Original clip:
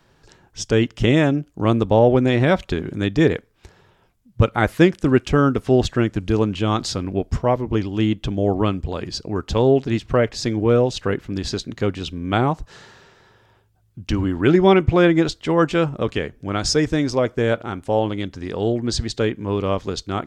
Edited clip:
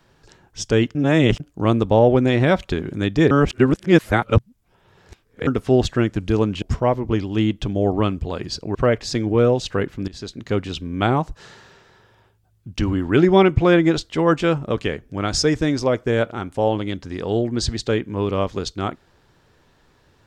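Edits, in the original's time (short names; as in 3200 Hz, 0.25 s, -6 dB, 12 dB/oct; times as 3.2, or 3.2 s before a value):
0.95–1.4 reverse
3.31–5.47 reverse
6.62–7.24 cut
9.37–10.06 cut
11.39–11.86 fade in, from -17 dB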